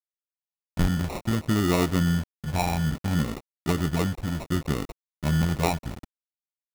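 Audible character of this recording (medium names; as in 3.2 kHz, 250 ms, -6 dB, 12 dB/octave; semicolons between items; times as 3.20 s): a quantiser's noise floor 6-bit, dither none; phasing stages 4, 0.65 Hz, lowest notch 370–2800 Hz; aliases and images of a low sample rate 1.6 kHz, jitter 0%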